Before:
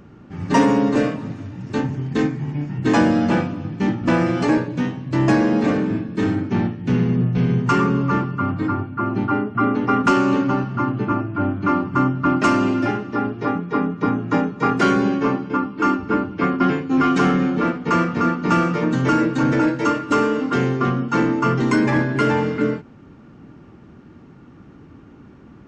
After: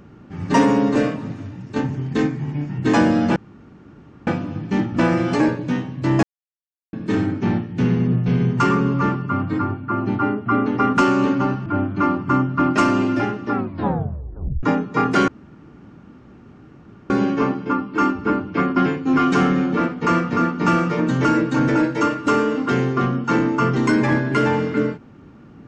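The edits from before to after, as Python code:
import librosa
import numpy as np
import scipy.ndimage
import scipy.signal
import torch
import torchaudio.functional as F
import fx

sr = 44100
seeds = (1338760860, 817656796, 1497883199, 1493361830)

y = fx.edit(x, sr, fx.fade_out_to(start_s=1.49, length_s=0.27, floor_db=-6.5),
    fx.insert_room_tone(at_s=3.36, length_s=0.91),
    fx.silence(start_s=5.32, length_s=0.7),
    fx.cut(start_s=10.75, length_s=0.57),
    fx.tape_stop(start_s=13.19, length_s=1.1),
    fx.insert_room_tone(at_s=14.94, length_s=1.82), tone=tone)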